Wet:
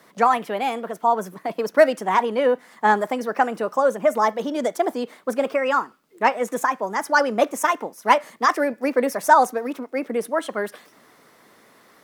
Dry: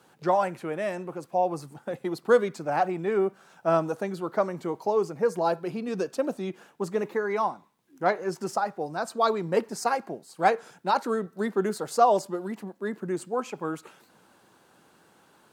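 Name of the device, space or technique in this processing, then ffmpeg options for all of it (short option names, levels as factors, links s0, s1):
nightcore: -af "asetrate=56889,aresample=44100,volume=2"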